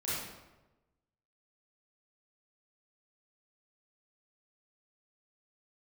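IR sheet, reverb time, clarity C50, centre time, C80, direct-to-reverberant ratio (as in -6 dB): 1.1 s, -3.5 dB, 90 ms, 1.0 dB, -10.5 dB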